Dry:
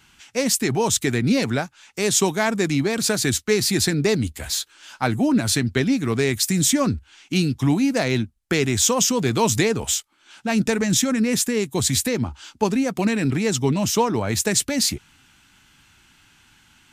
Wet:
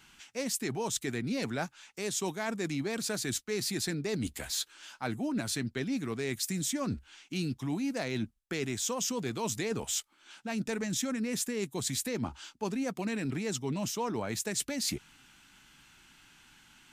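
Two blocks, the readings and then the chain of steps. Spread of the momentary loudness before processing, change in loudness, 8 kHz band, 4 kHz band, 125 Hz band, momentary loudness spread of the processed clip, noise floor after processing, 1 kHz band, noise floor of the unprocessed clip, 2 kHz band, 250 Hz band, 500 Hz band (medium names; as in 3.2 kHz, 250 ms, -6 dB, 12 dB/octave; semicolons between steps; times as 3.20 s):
7 LU, -13.0 dB, -12.5 dB, -12.5 dB, -14.0 dB, 5 LU, -64 dBFS, -13.0 dB, -57 dBFS, -12.5 dB, -13.0 dB, -13.0 dB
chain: peaking EQ 84 Hz -11 dB 0.69 oct; reverse; compression 6:1, threshold -27 dBFS, peak gain reduction 12.5 dB; reverse; trim -3.5 dB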